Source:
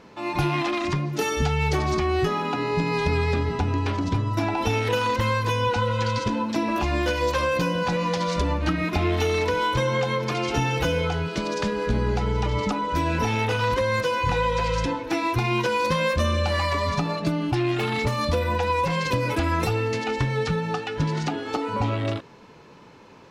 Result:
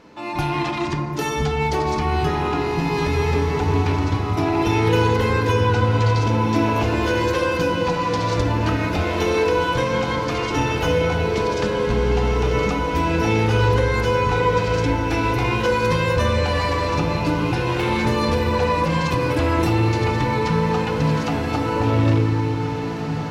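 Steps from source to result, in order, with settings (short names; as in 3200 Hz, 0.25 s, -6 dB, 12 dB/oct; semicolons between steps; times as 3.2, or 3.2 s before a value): diffused feedback echo 1.917 s, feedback 40%, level -5.5 dB; FDN reverb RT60 2.7 s, low-frequency decay 1.4×, high-frequency decay 0.25×, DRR 4 dB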